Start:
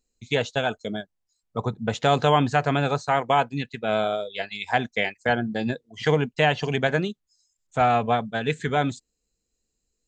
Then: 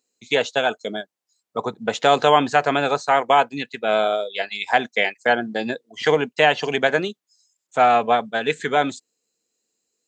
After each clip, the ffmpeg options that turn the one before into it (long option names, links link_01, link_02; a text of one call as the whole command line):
ffmpeg -i in.wav -af "highpass=310,volume=5dB" out.wav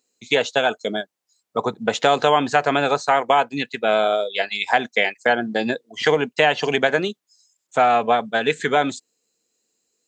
ffmpeg -i in.wav -af "acompressor=threshold=-19dB:ratio=2,volume=3.5dB" out.wav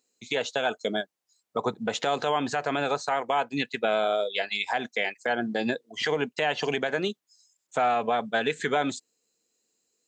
ffmpeg -i in.wav -af "alimiter=limit=-12dB:level=0:latency=1:release=122,volume=-3dB" out.wav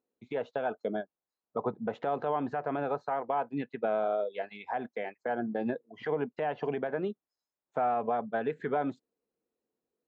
ffmpeg -i in.wav -af "lowpass=1100,volume=-3.5dB" out.wav